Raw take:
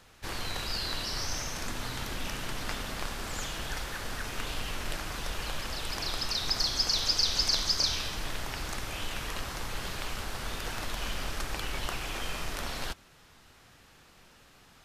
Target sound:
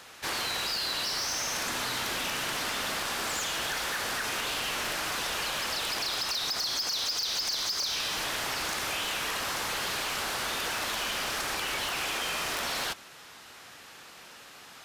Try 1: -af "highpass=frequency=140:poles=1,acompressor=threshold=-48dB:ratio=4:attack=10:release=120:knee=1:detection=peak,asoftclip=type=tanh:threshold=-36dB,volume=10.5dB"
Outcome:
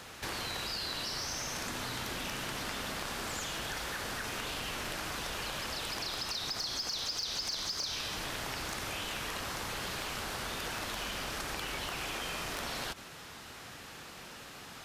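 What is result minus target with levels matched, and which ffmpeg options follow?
125 Hz band +8.5 dB; downward compressor: peak gain reduction +8 dB
-af "highpass=frequency=550:poles=1,acompressor=threshold=-37.5dB:ratio=4:attack=10:release=120:knee=1:detection=peak,asoftclip=type=tanh:threshold=-36dB,volume=10.5dB"

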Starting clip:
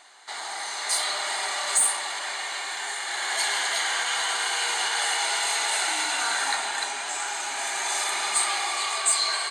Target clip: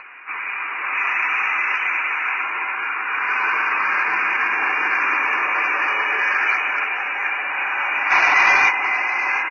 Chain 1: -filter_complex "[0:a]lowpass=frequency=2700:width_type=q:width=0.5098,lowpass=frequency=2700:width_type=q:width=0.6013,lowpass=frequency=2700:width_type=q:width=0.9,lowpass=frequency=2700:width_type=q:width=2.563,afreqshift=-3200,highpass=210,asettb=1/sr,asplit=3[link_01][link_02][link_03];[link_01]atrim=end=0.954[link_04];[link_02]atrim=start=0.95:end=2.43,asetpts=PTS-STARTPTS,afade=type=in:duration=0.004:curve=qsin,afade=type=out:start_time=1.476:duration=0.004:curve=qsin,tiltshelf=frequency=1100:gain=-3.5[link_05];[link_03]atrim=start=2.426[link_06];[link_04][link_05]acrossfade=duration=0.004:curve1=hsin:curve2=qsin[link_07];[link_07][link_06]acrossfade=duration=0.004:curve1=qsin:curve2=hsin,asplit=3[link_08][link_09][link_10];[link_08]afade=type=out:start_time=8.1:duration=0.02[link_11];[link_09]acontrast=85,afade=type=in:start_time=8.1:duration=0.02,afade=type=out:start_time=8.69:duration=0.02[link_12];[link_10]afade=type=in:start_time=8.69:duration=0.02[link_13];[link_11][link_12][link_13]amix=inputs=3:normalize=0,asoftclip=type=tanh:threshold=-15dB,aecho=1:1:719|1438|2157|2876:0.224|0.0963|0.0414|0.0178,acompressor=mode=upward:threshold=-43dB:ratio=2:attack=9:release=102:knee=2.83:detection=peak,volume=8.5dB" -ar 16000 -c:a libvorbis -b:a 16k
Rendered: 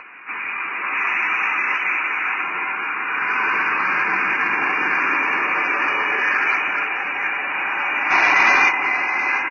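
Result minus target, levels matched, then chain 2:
250 Hz band +7.0 dB
-filter_complex "[0:a]lowpass=frequency=2700:width_type=q:width=0.5098,lowpass=frequency=2700:width_type=q:width=0.6013,lowpass=frequency=2700:width_type=q:width=0.9,lowpass=frequency=2700:width_type=q:width=2.563,afreqshift=-3200,highpass=470,asettb=1/sr,asplit=3[link_01][link_02][link_03];[link_01]atrim=end=0.954[link_04];[link_02]atrim=start=0.95:end=2.43,asetpts=PTS-STARTPTS,afade=type=in:duration=0.004:curve=qsin,afade=type=out:start_time=1.476:duration=0.004:curve=qsin,tiltshelf=frequency=1100:gain=-3.5[link_05];[link_03]atrim=start=2.426[link_06];[link_04][link_05]acrossfade=duration=0.004:curve1=hsin:curve2=qsin[link_07];[link_07][link_06]acrossfade=duration=0.004:curve1=qsin:curve2=hsin,asplit=3[link_08][link_09][link_10];[link_08]afade=type=out:start_time=8.1:duration=0.02[link_11];[link_09]acontrast=85,afade=type=in:start_time=8.1:duration=0.02,afade=type=out:start_time=8.69:duration=0.02[link_12];[link_10]afade=type=in:start_time=8.69:duration=0.02[link_13];[link_11][link_12][link_13]amix=inputs=3:normalize=0,asoftclip=type=tanh:threshold=-15dB,aecho=1:1:719|1438|2157|2876:0.224|0.0963|0.0414|0.0178,acompressor=mode=upward:threshold=-43dB:ratio=2:attack=9:release=102:knee=2.83:detection=peak,volume=8.5dB" -ar 16000 -c:a libvorbis -b:a 16k

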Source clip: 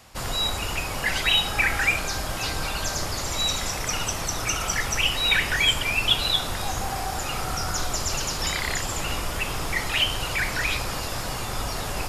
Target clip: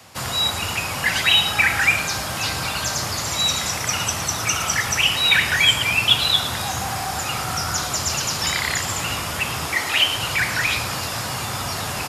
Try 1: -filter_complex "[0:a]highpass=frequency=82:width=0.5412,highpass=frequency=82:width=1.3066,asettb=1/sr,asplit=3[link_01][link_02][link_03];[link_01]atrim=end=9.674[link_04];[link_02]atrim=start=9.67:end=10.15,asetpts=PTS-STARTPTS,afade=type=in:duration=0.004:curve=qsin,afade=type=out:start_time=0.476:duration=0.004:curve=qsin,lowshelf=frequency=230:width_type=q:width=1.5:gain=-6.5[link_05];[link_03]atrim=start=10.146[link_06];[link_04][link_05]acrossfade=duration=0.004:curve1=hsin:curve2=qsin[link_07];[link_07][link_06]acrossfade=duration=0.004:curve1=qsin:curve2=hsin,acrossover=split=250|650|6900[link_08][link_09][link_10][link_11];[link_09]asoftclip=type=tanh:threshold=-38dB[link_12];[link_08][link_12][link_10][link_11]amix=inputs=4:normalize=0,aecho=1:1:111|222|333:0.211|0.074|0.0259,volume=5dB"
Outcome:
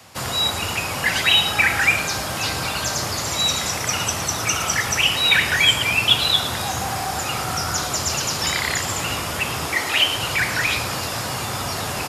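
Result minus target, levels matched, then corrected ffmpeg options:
soft clipping: distortion −8 dB
-filter_complex "[0:a]highpass=frequency=82:width=0.5412,highpass=frequency=82:width=1.3066,asettb=1/sr,asplit=3[link_01][link_02][link_03];[link_01]atrim=end=9.674[link_04];[link_02]atrim=start=9.67:end=10.15,asetpts=PTS-STARTPTS,afade=type=in:duration=0.004:curve=qsin,afade=type=out:start_time=0.476:duration=0.004:curve=qsin,lowshelf=frequency=230:width_type=q:width=1.5:gain=-6.5[link_05];[link_03]atrim=start=10.146[link_06];[link_04][link_05]acrossfade=duration=0.004:curve1=hsin:curve2=qsin[link_07];[link_07][link_06]acrossfade=duration=0.004:curve1=qsin:curve2=hsin,acrossover=split=250|650|6900[link_08][link_09][link_10][link_11];[link_09]asoftclip=type=tanh:threshold=-47dB[link_12];[link_08][link_12][link_10][link_11]amix=inputs=4:normalize=0,aecho=1:1:111|222|333:0.211|0.074|0.0259,volume=5dB"

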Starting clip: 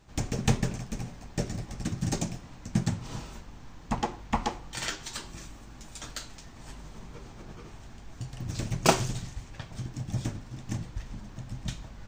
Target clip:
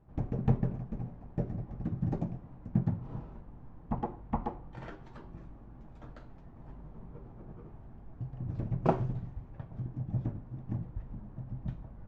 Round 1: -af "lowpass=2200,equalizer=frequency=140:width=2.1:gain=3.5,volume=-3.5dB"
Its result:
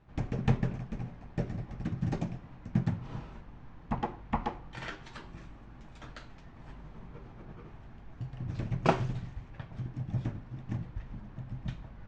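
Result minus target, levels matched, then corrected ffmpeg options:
2,000 Hz band +10.5 dB
-af "lowpass=880,equalizer=frequency=140:width=2.1:gain=3.5,volume=-3.5dB"

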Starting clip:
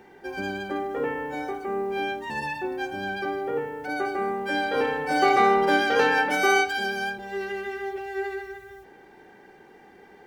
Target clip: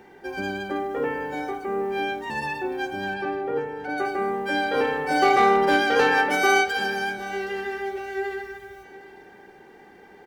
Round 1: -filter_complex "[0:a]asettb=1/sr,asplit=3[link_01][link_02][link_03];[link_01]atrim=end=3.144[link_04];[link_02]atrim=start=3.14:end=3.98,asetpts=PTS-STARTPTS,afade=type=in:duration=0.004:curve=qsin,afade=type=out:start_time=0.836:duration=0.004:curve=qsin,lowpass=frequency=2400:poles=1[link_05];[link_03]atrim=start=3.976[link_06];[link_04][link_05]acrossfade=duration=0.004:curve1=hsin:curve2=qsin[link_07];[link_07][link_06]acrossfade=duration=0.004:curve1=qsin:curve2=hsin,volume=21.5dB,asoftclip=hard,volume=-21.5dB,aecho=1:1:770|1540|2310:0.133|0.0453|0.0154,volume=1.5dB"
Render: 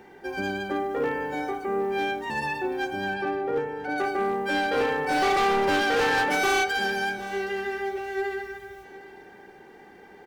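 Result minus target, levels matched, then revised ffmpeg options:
gain into a clipping stage and back: distortion +18 dB
-filter_complex "[0:a]asettb=1/sr,asplit=3[link_01][link_02][link_03];[link_01]atrim=end=3.144[link_04];[link_02]atrim=start=3.14:end=3.98,asetpts=PTS-STARTPTS,afade=type=in:duration=0.004:curve=qsin,afade=type=out:start_time=0.836:duration=0.004:curve=qsin,lowpass=frequency=2400:poles=1[link_05];[link_03]atrim=start=3.976[link_06];[link_04][link_05]acrossfade=duration=0.004:curve1=hsin:curve2=qsin[link_07];[link_07][link_06]acrossfade=duration=0.004:curve1=qsin:curve2=hsin,volume=12.5dB,asoftclip=hard,volume=-12.5dB,aecho=1:1:770|1540|2310:0.133|0.0453|0.0154,volume=1.5dB"

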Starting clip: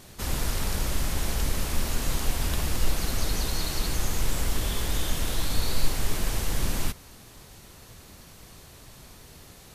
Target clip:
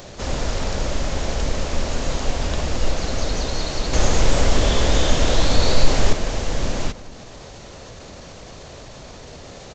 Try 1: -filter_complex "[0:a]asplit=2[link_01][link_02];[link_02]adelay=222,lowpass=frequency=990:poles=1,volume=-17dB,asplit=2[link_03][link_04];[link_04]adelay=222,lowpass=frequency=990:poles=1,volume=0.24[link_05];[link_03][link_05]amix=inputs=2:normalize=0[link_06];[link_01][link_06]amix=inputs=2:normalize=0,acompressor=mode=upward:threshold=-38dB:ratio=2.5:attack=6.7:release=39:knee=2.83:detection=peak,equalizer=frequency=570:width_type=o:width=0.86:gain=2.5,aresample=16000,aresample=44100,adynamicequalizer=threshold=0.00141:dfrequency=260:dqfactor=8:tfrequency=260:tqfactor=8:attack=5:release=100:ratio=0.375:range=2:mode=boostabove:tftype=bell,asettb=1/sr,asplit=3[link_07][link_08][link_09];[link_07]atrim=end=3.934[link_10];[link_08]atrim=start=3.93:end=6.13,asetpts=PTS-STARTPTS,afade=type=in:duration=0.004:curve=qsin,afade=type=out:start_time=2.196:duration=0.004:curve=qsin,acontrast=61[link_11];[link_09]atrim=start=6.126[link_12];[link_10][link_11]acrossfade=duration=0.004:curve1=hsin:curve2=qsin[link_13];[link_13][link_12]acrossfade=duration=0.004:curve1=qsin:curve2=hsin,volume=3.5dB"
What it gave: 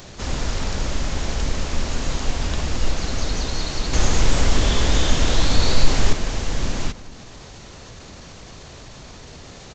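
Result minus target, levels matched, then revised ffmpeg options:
500 Hz band −4.0 dB
-filter_complex "[0:a]asplit=2[link_01][link_02];[link_02]adelay=222,lowpass=frequency=990:poles=1,volume=-17dB,asplit=2[link_03][link_04];[link_04]adelay=222,lowpass=frequency=990:poles=1,volume=0.24[link_05];[link_03][link_05]amix=inputs=2:normalize=0[link_06];[link_01][link_06]amix=inputs=2:normalize=0,acompressor=mode=upward:threshold=-38dB:ratio=2.5:attack=6.7:release=39:knee=2.83:detection=peak,equalizer=frequency=570:width_type=o:width=0.86:gain=9,aresample=16000,aresample=44100,adynamicequalizer=threshold=0.00141:dfrequency=260:dqfactor=8:tfrequency=260:tqfactor=8:attack=5:release=100:ratio=0.375:range=2:mode=boostabove:tftype=bell,asettb=1/sr,asplit=3[link_07][link_08][link_09];[link_07]atrim=end=3.934[link_10];[link_08]atrim=start=3.93:end=6.13,asetpts=PTS-STARTPTS,afade=type=in:duration=0.004:curve=qsin,afade=type=out:start_time=2.196:duration=0.004:curve=qsin,acontrast=61[link_11];[link_09]atrim=start=6.126[link_12];[link_10][link_11]acrossfade=duration=0.004:curve1=hsin:curve2=qsin[link_13];[link_13][link_12]acrossfade=duration=0.004:curve1=qsin:curve2=hsin,volume=3.5dB"

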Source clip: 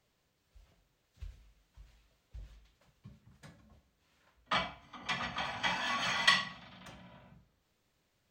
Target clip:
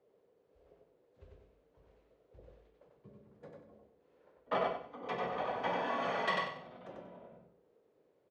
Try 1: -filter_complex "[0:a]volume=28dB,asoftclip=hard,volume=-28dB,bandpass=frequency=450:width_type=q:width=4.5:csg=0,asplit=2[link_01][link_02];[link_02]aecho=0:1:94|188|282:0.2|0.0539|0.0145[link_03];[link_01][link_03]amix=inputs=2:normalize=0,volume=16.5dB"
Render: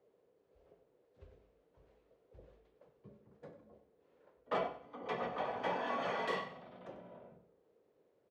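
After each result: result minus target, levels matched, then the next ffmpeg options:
echo-to-direct −11 dB; gain into a clipping stage and back: distortion +10 dB
-filter_complex "[0:a]volume=28dB,asoftclip=hard,volume=-28dB,bandpass=frequency=450:width_type=q:width=4.5:csg=0,asplit=2[link_01][link_02];[link_02]aecho=0:1:94|188|282|376:0.708|0.191|0.0516|0.0139[link_03];[link_01][link_03]amix=inputs=2:normalize=0,volume=16.5dB"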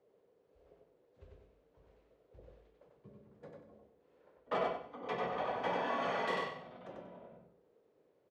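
gain into a clipping stage and back: distortion +10 dB
-filter_complex "[0:a]volume=18.5dB,asoftclip=hard,volume=-18.5dB,bandpass=frequency=450:width_type=q:width=4.5:csg=0,asplit=2[link_01][link_02];[link_02]aecho=0:1:94|188|282|376:0.708|0.191|0.0516|0.0139[link_03];[link_01][link_03]amix=inputs=2:normalize=0,volume=16.5dB"

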